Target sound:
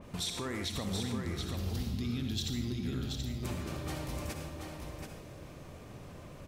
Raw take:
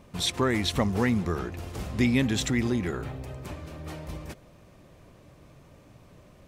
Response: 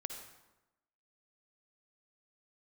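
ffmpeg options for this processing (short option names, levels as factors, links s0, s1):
-filter_complex "[0:a]asettb=1/sr,asplit=3[s0][s1][s2];[s0]atrim=end=1.004[s3];[s1]atrim=start=1:end=3.43,asetpts=PTS-STARTPTS,afade=t=in:d=0.004:c=qsin,afade=t=out:st=2.426:d=0.004:c=qsin,equalizer=f=500:t=o:w=1:g=-11,equalizer=f=1000:t=o:w=1:g=-10,equalizer=f=2000:t=o:w=1:g=-11,equalizer=f=4000:t=o:w=1:g=6,equalizer=f=8000:t=o:w=1:g=-11[s4];[s2]atrim=start=3.426[s5];[s3][s4]acrossfade=d=0.004:c1=hsin:c2=qsin[s6];[s6][s5]acrossfade=d=0.004:c1=qsin:c2=hsin,acompressor=threshold=0.01:ratio=2,alimiter=level_in=2.37:limit=0.0631:level=0:latency=1:release=138,volume=0.422,aecho=1:1:730:0.562[s7];[1:a]atrim=start_sample=2205,afade=t=out:st=0.22:d=0.01,atrim=end_sample=10143[s8];[s7][s8]afir=irnorm=-1:irlink=0,adynamicequalizer=threshold=0.00112:dfrequency=3200:dqfactor=0.7:tfrequency=3200:tqfactor=0.7:attack=5:release=100:ratio=0.375:range=2.5:mode=boostabove:tftype=highshelf,volume=1.88"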